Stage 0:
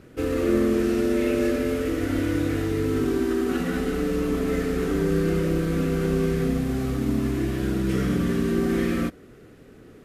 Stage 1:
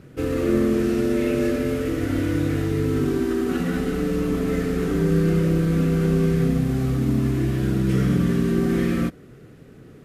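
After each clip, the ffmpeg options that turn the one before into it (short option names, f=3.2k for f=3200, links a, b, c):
-af "equalizer=f=140:w=1.7:g=8.5"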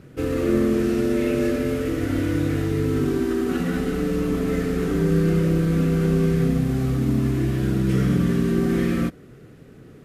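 -af anull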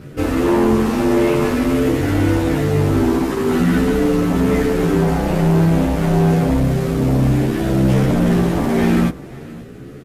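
-filter_complex "[0:a]asplit=2[a][b];[b]aeval=exprs='0.398*sin(PI/2*3.55*val(0)/0.398)':c=same,volume=-4.5dB[c];[a][c]amix=inputs=2:normalize=0,aecho=1:1:531:0.1,asplit=2[d][e];[e]adelay=11.3,afreqshift=1.5[f];[d][f]amix=inputs=2:normalize=1"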